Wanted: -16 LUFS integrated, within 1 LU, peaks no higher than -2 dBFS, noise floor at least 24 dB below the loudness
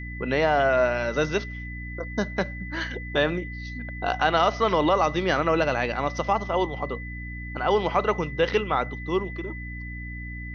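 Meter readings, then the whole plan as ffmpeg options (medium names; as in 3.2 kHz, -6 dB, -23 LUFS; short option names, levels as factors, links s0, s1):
hum 60 Hz; highest harmonic 300 Hz; hum level -34 dBFS; steady tone 2 kHz; tone level -38 dBFS; loudness -25.5 LUFS; peak level -7.5 dBFS; loudness target -16.0 LUFS
-> -af "bandreject=f=60:t=h:w=6,bandreject=f=120:t=h:w=6,bandreject=f=180:t=h:w=6,bandreject=f=240:t=h:w=6,bandreject=f=300:t=h:w=6"
-af "bandreject=f=2000:w=30"
-af "volume=2.99,alimiter=limit=0.794:level=0:latency=1"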